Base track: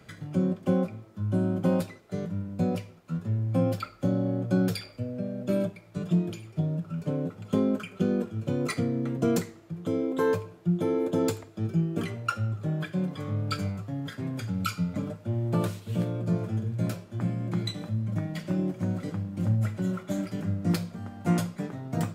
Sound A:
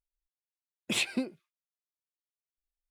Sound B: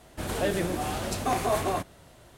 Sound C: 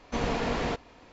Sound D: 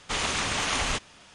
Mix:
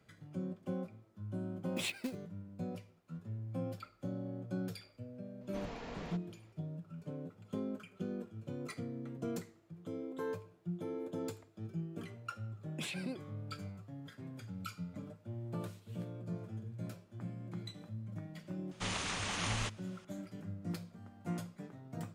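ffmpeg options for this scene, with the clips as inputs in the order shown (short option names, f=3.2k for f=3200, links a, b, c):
-filter_complex "[1:a]asplit=2[a][b];[0:a]volume=-14.5dB[c];[a]acrusher=bits=3:mode=log:mix=0:aa=0.000001[d];[b]alimiter=level_in=4dB:limit=-24dB:level=0:latency=1:release=12,volume=-4dB[e];[d]atrim=end=2.9,asetpts=PTS-STARTPTS,volume=-9dB,afade=t=in:d=0.004:c=hsin,afade=t=out:st=2.896:d=0.004:c=hsin,adelay=870[f];[3:a]atrim=end=1.12,asetpts=PTS-STARTPTS,volume=-16.5dB,afade=t=in:d=0.004:c=hsin,afade=t=out:st=1.116:d=0.004:c=hsin,adelay=238581S[g];[e]atrim=end=2.9,asetpts=PTS-STARTPTS,volume=-5dB,afade=t=in:d=0.004:c=hsin,afade=t=out:st=2.896:d=0.004:c=hsin,adelay=11890[h];[4:a]atrim=end=1.34,asetpts=PTS-STARTPTS,volume=-10.5dB,afade=t=in:d=0.004:c=hsin,afade=t=out:st=1.336:d=0.004:c=hsin,adelay=18710[i];[c][f][g][h][i]amix=inputs=5:normalize=0"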